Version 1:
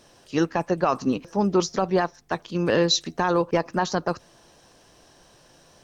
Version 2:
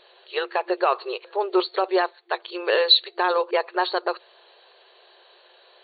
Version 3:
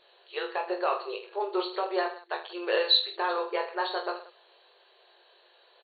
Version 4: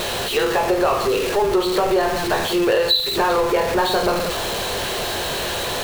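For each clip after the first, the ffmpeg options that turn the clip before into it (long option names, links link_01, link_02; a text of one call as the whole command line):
ffmpeg -i in.wav -af "aemphasis=mode=production:type=75kf,afftfilt=real='re*between(b*sr/4096,350,4500)':imag='im*between(b*sr/4096,350,4500)':win_size=4096:overlap=0.75,volume=1dB" out.wav
ffmpeg -i in.wav -af "aecho=1:1:20|46|79.8|123.7|180.9:0.631|0.398|0.251|0.158|0.1,volume=-8.5dB" out.wav
ffmpeg -i in.wav -af "aeval=exprs='val(0)+0.5*0.0376*sgn(val(0))':channel_layout=same,lowshelf=frequency=290:gain=12,acompressor=threshold=-23dB:ratio=5,volume=8.5dB" out.wav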